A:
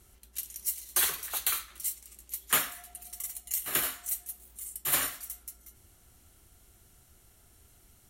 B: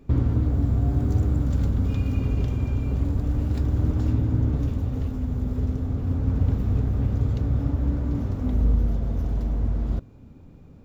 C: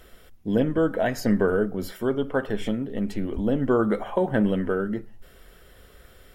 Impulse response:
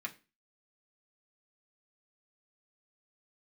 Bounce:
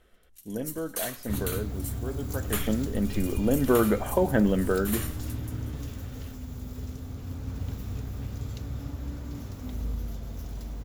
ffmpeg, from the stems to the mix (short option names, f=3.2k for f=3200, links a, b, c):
-filter_complex "[0:a]volume=-7dB[a];[1:a]crystalizer=i=9.5:c=0,adelay=1200,volume=-12dB[b];[2:a]lowpass=4.3k,volume=-0.5dB,afade=t=in:st=2.41:d=0.26:silence=0.281838,asplit=2[c][d];[d]apad=whole_len=356769[e];[a][e]sidechaingate=range=-9dB:threshold=-55dB:ratio=16:detection=peak[f];[f][b][c]amix=inputs=3:normalize=0"